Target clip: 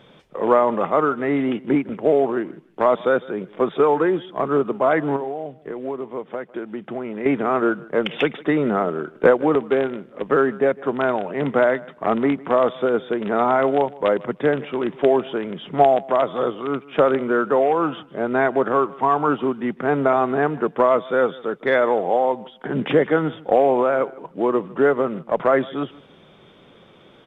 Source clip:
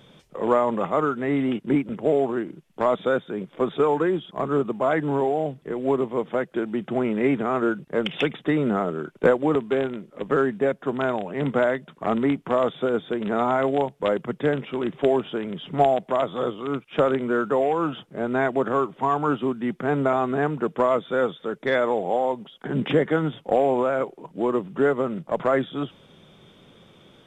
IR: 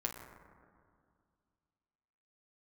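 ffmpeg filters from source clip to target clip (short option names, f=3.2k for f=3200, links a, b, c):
-filter_complex "[0:a]bass=f=250:g=-6,treble=f=4k:g=-12,asettb=1/sr,asplit=3[a][b][c];[a]atrim=end=5.164[d];[b]atrim=start=5.16:end=7.26,asetpts=PTS-STARTPTS,afade=t=in:d=0.004:c=qsin,afade=t=out:st=2.096:d=0.004:c=qsin,acompressor=threshold=-34dB:ratio=2.5[e];[c]atrim=start=7.256[f];[d][e]acrossfade=d=0.004:c1=hsin:c2=qsin[g];[g][f]acrossfade=d=0.004:c1=qsin:c2=hsin,aecho=1:1:154|308:0.0841|0.0143,volume=4.5dB"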